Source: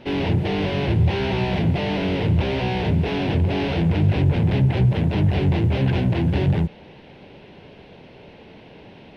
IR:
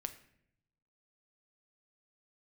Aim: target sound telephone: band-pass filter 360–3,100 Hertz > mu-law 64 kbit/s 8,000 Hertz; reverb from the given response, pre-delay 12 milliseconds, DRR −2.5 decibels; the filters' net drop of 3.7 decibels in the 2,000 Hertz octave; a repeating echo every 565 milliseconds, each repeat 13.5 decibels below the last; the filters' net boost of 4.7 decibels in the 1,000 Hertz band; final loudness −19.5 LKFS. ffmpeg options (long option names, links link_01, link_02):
-filter_complex "[0:a]equalizer=frequency=1000:width_type=o:gain=7.5,equalizer=frequency=2000:width_type=o:gain=-5.5,aecho=1:1:565|1130:0.211|0.0444,asplit=2[link_01][link_02];[1:a]atrim=start_sample=2205,adelay=12[link_03];[link_02][link_03]afir=irnorm=-1:irlink=0,volume=4.5dB[link_04];[link_01][link_04]amix=inputs=2:normalize=0,highpass=360,lowpass=3100,volume=3dB" -ar 8000 -c:a pcm_mulaw